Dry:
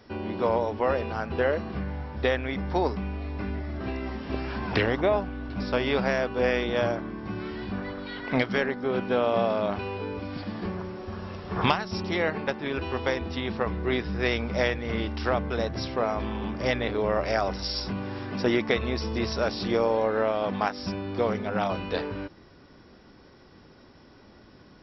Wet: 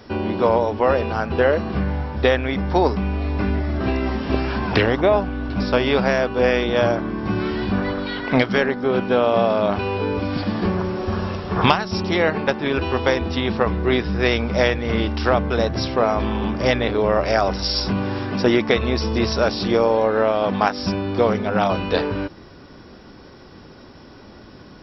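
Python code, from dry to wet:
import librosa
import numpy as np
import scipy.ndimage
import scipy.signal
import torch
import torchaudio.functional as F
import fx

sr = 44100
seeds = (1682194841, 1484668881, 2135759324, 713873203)

p1 = fx.peak_eq(x, sr, hz=2000.0, db=-2.5, octaves=0.36)
p2 = fx.rider(p1, sr, range_db=10, speed_s=0.5)
p3 = p1 + F.gain(torch.from_numpy(p2), -2.0).numpy()
y = F.gain(torch.from_numpy(p3), 3.0).numpy()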